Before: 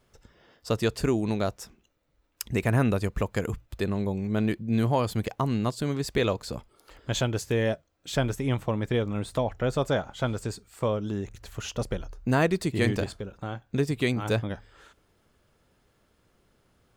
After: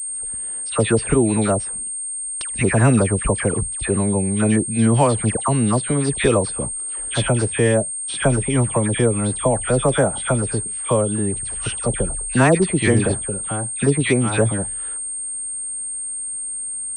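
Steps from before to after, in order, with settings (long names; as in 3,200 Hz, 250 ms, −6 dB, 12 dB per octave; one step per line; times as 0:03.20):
all-pass dispersion lows, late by 88 ms, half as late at 1,600 Hz
switching amplifier with a slow clock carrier 8,600 Hz
level +8.5 dB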